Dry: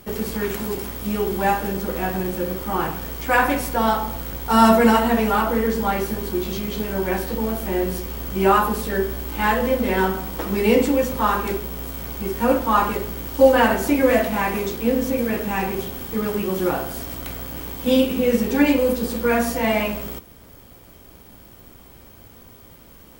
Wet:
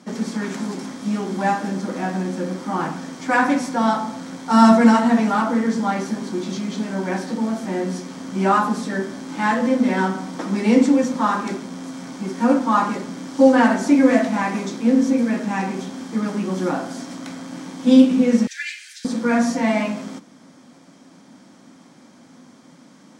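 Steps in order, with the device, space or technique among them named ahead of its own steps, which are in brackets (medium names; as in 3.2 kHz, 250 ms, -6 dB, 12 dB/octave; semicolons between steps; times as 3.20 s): television speaker (cabinet simulation 170–8200 Hz, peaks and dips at 170 Hz +6 dB, 260 Hz +9 dB, 420 Hz -9 dB, 2.8 kHz -7 dB, 5.8 kHz +4 dB); 18.47–19.05 s: steep high-pass 1.6 kHz 72 dB/octave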